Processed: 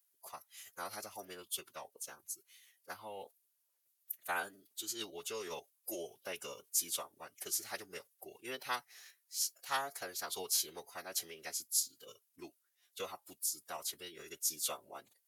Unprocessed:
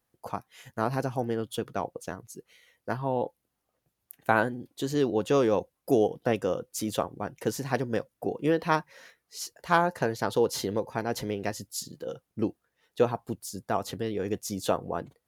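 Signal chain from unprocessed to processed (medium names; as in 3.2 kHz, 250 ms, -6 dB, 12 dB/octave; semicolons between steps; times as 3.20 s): formant-preserving pitch shift -4 st; differentiator; trim +4 dB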